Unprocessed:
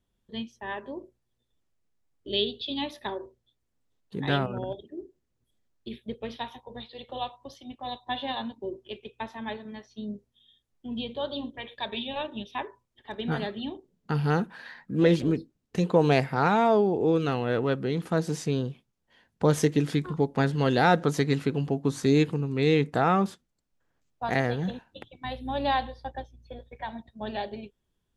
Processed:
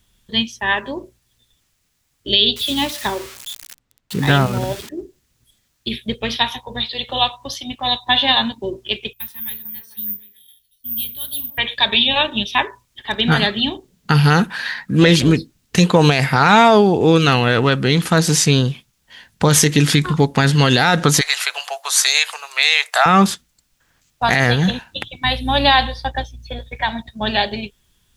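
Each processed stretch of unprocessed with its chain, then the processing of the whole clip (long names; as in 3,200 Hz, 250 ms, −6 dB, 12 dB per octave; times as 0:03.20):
0:02.56–0:04.89: spike at every zero crossing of −28.5 dBFS + low-pass filter 1,100 Hz 6 dB per octave
0:09.13–0:11.58: guitar amp tone stack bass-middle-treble 6-0-2 + echo through a band-pass that steps 148 ms, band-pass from 420 Hz, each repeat 0.7 octaves, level −8 dB + bad sample-rate conversion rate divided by 3×, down none, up zero stuff
0:21.21–0:23.06: elliptic high-pass filter 640 Hz, stop band 60 dB + high-shelf EQ 6,900 Hz +7 dB
whole clip: guitar amp tone stack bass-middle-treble 5-5-5; boost into a limiter +31 dB; level −1 dB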